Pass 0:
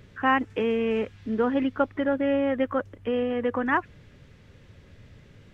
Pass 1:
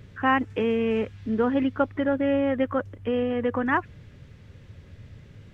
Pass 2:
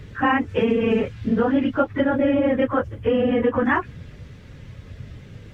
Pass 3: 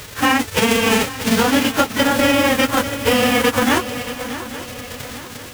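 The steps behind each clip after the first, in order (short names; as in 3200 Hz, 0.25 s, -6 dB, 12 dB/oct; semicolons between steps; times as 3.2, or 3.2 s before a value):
bell 96 Hz +6.5 dB 1.7 oct
phase scrambler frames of 50 ms; compressor, threshold -23 dBFS, peak gain reduction 7 dB; gain +7.5 dB
spectral whitening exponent 0.3; swung echo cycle 0.841 s, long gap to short 3:1, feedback 43%, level -13 dB; gain +3.5 dB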